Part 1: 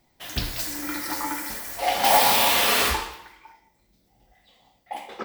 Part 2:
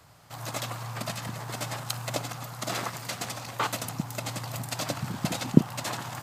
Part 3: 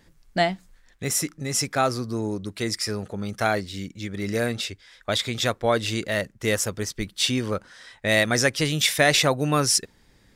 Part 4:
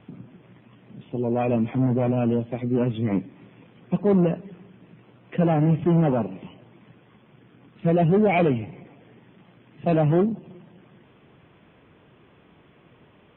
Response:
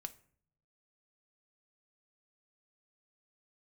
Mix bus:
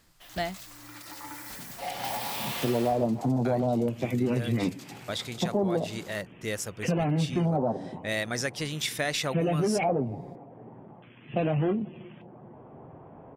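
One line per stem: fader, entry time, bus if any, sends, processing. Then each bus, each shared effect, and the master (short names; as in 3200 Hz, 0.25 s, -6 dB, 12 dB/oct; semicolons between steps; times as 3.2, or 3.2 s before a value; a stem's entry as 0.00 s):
-9.0 dB, 0.00 s, no send, compressor 4:1, threshold -22 dBFS, peak gain reduction 8.5 dB; auto duck -9 dB, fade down 0.55 s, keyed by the third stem
-4.0 dB, 0.00 s, no send, passive tone stack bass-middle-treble 10-0-10; compressor, threshold -42 dBFS, peak gain reduction 14 dB
-9.0 dB, 0.00 s, muted 0.89–3.45, no send, dry
-5.5 dB, 1.50 s, no send, AGC gain up to 15 dB; LFO low-pass square 0.42 Hz 810–2800 Hz; flange 0.34 Hz, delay 7.4 ms, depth 1.3 ms, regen -62%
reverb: off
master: compressor 4:1, threshold -24 dBFS, peak gain reduction 10 dB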